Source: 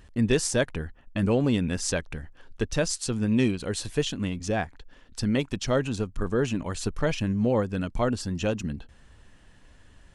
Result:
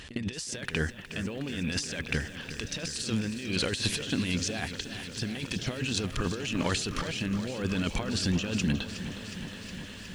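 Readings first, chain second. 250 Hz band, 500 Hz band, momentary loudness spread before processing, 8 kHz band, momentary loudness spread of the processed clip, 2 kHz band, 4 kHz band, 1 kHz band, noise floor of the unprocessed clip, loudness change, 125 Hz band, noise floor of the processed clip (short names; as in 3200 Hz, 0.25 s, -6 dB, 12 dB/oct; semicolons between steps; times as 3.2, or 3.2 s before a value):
-5.0 dB, -9.5 dB, 10 LU, -2.0 dB, 9 LU, +0.5 dB, +3.0 dB, -5.0 dB, -55 dBFS, -4.5 dB, -4.0 dB, -44 dBFS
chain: weighting filter D; negative-ratio compressor -34 dBFS, ratio -1; low shelf 120 Hz +7.5 dB; pre-echo 55 ms -13 dB; lo-fi delay 0.364 s, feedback 80%, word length 9-bit, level -12 dB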